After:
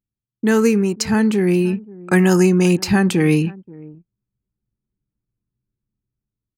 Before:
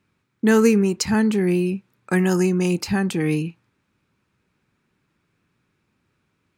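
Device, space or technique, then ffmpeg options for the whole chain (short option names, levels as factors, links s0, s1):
voice memo with heavy noise removal: -filter_complex "[0:a]asplit=2[s0][s1];[s1]adelay=530.6,volume=0.0794,highshelf=f=4000:g=-11.9[s2];[s0][s2]amix=inputs=2:normalize=0,anlmdn=0.158,dynaudnorm=f=270:g=9:m=2.51"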